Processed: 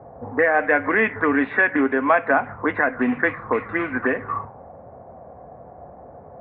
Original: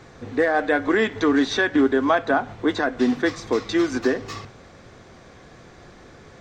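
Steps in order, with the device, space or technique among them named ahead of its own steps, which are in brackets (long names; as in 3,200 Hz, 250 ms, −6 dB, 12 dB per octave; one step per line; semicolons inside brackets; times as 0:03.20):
0:01.47–0:02.35: high-pass filter 130 Hz
envelope filter bass rig (envelope-controlled low-pass 670–2,500 Hz up, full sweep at −17.5 dBFS; loudspeaker in its box 63–2,200 Hz, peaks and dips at 69 Hz +6 dB, 350 Hz −8 dB, 550 Hz +3 dB, 1,000 Hz +3 dB)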